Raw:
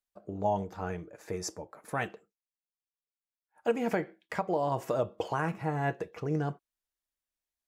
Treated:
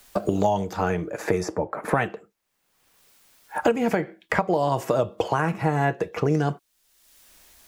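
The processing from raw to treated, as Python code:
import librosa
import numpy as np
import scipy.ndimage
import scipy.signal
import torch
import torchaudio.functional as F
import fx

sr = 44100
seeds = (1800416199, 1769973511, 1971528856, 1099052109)

y = fx.band_squash(x, sr, depth_pct=100)
y = y * librosa.db_to_amplitude(8.0)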